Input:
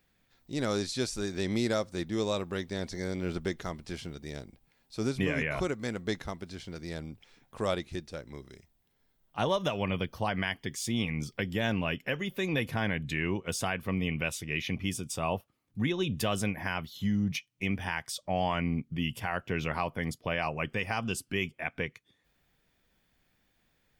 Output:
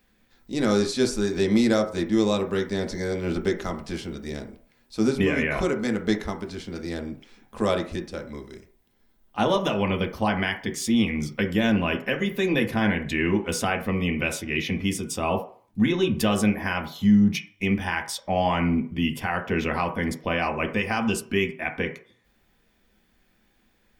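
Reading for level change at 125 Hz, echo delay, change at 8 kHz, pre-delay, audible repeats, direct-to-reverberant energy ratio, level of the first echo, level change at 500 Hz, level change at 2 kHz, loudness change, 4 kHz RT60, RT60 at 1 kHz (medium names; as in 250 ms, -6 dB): +5.0 dB, no echo, +5.0 dB, 3 ms, no echo, 3.5 dB, no echo, +8.0 dB, +6.0 dB, +7.5 dB, 0.45 s, 0.50 s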